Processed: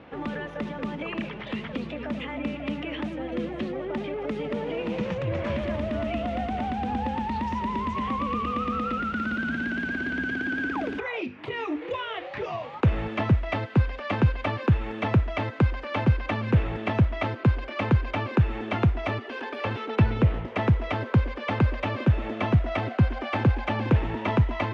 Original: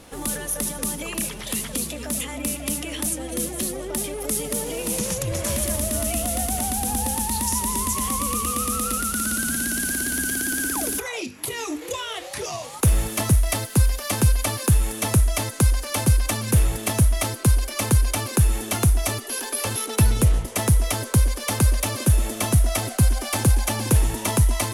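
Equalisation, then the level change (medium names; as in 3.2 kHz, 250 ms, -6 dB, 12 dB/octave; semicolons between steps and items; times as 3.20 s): high-pass 89 Hz 12 dB/octave; low-pass 2.7 kHz 24 dB/octave; 0.0 dB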